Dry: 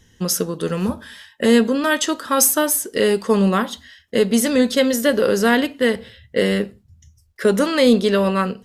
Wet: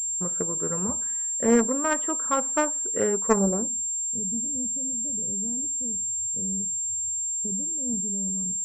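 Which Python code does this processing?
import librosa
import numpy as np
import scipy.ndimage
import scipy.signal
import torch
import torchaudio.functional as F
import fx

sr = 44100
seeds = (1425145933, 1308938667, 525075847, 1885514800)

y = fx.filter_sweep_lowpass(x, sr, from_hz=1200.0, to_hz=140.0, start_s=3.28, end_s=3.96, q=1.5)
y = fx.cheby_harmonics(y, sr, harmonics=(3, 5), levels_db=(-13, -42), full_scale_db=-3.0)
y = fx.pwm(y, sr, carrier_hz=7400.0)
y = F.gain(torch.from_numpy(y), -2.5).numpy()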